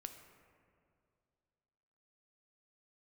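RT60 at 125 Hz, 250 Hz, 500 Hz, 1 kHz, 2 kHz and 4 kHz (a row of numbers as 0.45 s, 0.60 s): 2.7 s, 2.5 s, 2.5 s, 2.2 s, 1.8 s, 1.3 s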